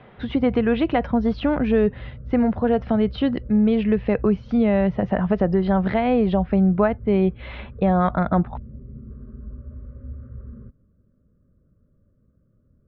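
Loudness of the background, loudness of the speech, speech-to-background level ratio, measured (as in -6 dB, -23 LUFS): -39.0 LUFS, -21.0 LUFS, 18.0 dB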